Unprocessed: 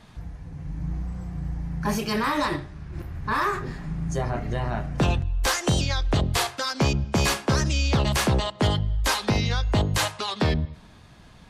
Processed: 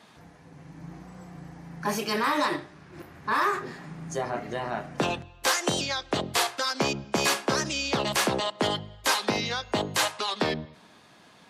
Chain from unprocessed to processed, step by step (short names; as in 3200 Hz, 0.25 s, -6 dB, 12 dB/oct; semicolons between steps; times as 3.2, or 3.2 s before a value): HPF 270 Hz 12 dB/oct